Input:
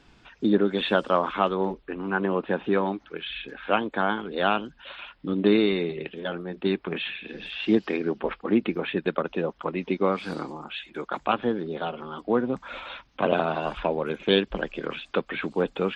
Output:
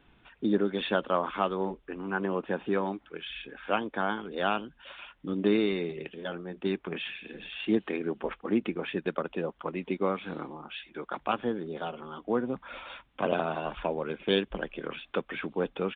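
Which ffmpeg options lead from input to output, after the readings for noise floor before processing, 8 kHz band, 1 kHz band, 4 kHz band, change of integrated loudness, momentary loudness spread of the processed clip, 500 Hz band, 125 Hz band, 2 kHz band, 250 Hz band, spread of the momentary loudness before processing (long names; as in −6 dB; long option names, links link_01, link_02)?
−59 dBFS, can't be measured, −5.0 dB, −5.5 dB, −5.0 dB, 12 LU, −5.0 dB, −5.0 dB, −5.0 dB, −5.0 dB, 12 LU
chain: -af "aresample=8000,aresample=44100,volume=-5dB"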